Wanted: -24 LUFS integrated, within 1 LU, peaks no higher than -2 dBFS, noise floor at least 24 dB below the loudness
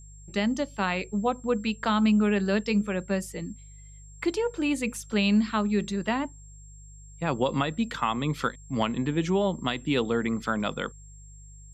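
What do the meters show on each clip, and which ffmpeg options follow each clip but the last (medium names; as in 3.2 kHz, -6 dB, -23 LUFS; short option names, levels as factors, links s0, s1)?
hum 50 Hz; highest harmonic 150 Hz; hum level -45 dBFS; steady tone 7.5 kHz; tone level -52 dBFS; loudness -27.5 LUFS; peak level -13.0 dBFS; loudness target -24.0 LUFS
-> -af "bandreject=f=50:t=h:w=4,bandreject=f=100:t=h:w=4,bandreject=f=150:t=h:w=4"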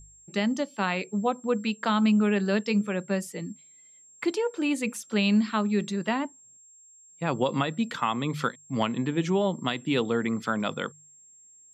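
hum not found; steady tone 7.5 kHz; tone level -52 dBFS
-> -af "bandreject=f=7500:w=30"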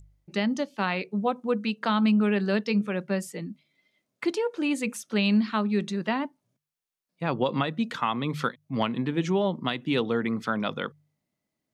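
steady tone not found; loudness -27.5 LUFS; peak level -13.0 dBFS; loudness target -24.0 LUFS
-> -af "volume=1.5"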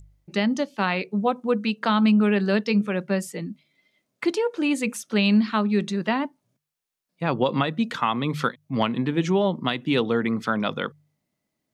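loudness -24.0 LUFS; peak level -9.5 dBFS; noise floor -81 dBFS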